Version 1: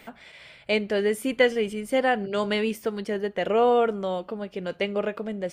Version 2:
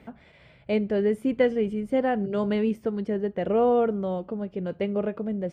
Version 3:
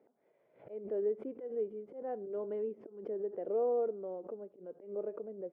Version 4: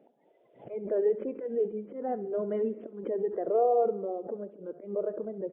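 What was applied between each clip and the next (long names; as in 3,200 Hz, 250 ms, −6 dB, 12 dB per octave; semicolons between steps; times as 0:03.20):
high-pass filter 71 Hz 12 dB per octave; spectral tilt −4 dB per octave; level −5 dB
volume swells 192 ms; four-pole ladder band-pass 490 Hz, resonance 45%; background raised ahead of every attack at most 130 dB per second; level −2.5 dB
spectral magnitudes quantised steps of 30 dB; repeating echo 67 ms, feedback 56%, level −17 dB; downsampling to 8,000 Hz; level +7.5 dB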